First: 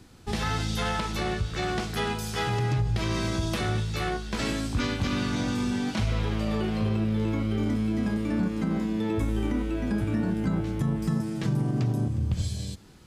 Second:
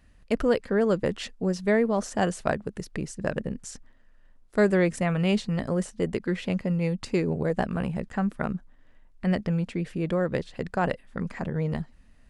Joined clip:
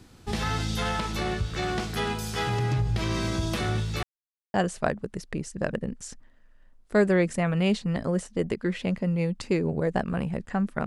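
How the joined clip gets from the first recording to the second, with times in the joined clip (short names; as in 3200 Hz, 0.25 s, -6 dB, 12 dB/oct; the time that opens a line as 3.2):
first
4.03–4.54 mute
4.54 switch to second from 2.17 s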